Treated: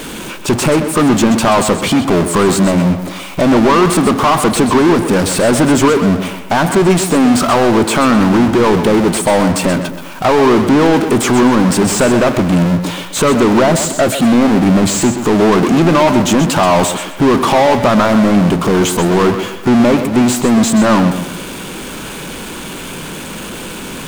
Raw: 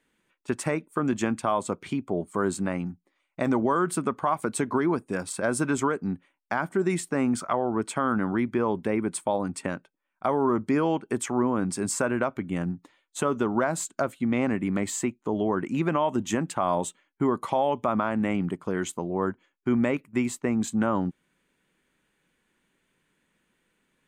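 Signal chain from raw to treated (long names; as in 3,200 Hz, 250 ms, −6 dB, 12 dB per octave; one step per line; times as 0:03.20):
parametric band 1,900 Hz −13 dB 0.41 octaves
power curve on the samples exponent 0.35
on a send: tape delay 128 ms, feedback 44%, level −8 dB, low-pass 4,100 Hz
on the sum: slew-rate limiting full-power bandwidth 390 Hz
level +8 dB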